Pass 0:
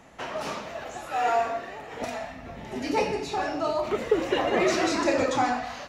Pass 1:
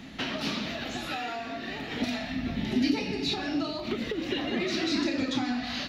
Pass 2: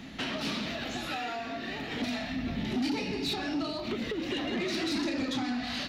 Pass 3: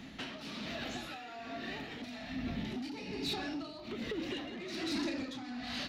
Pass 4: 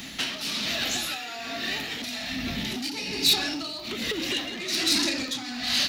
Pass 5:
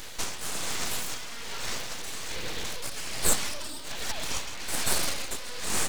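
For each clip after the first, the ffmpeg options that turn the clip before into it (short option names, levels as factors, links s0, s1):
-af "acompressor=threshold=0.02:ratio=5,equalizer=f=250:t=o:w=1:g=10,equalizer=f=500:t=o:w=1:g=-9,equalizer=f=1000:t=o:w=1:g=-9,equalizer=f=4000:t=o:w=1:g=11,equalizer=f=8000:t=o:w=1:g=-11,volume=2.24"
-af "asoftclip=type=tanh:threshold=0.0531"
-af "tremolo=f=1.2:d=0.62,volume=0.631"
-af "crystalizer=i=7:c=0,volume=1.78"
-af "aeval=exprs='abs(val(0))':c=same"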